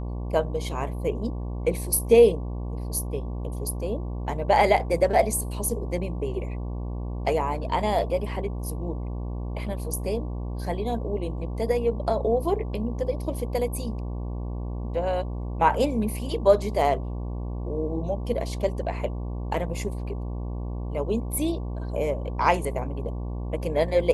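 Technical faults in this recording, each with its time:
mains buzz 60 Hz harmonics 19 −31 dBFS

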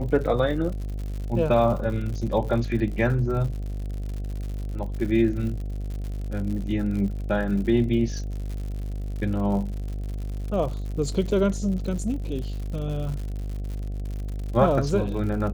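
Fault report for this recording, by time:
mains buzz 50 Hz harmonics 15 −30 dBFS
surface crackle 100 per second −33 dBFS

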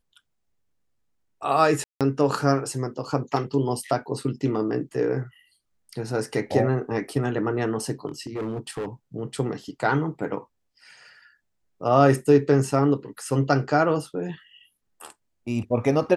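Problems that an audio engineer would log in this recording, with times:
0:01.84–0:02.01: drop-out 167 ms
0:08.07–0:08.86: clipping −26 dBFS

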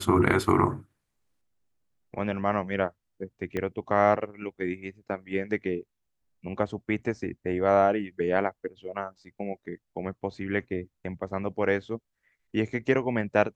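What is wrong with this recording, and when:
0:03.57: click −18 dBFS

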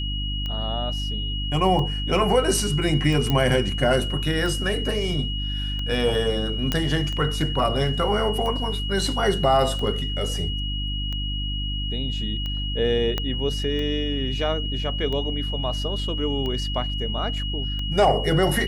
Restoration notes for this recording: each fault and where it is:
mains hum 50 Hz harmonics 6 −28 dBFS
scratch tick 45 rpm −19 dBFS
whistle 2,900 Hz −30 dBFS
0:03.30: click −10 dBFS
0:06.72: click −8 dBFS
0:13.18: click −11 dBFS

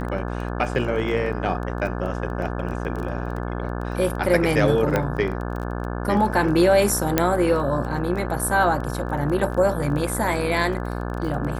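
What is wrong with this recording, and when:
mains buzz 60 Hz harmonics 29 −28 dBFS
surface crackle 14 per second −29 dBFS
0:04.96: click −8 dBFS
0:07.18: click −2 dBFS

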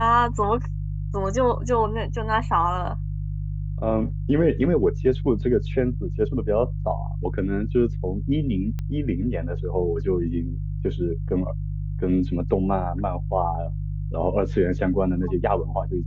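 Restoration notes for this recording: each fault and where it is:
mains hum 50 Hz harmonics 3 −28 dBFS
0:08.79: click −19 dBFS

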